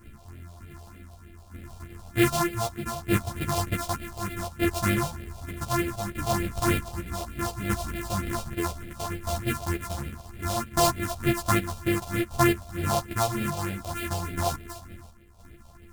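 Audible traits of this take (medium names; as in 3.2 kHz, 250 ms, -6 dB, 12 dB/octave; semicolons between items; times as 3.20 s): a buzz of ramps at a fixed pitch in blocks of 128 samples; phasing stages 4, 3.3 Hz, lowest notch 300–1000 Hz; tremolo saw down 0.65 Hz, depth 60%; a shimmering, thickened sound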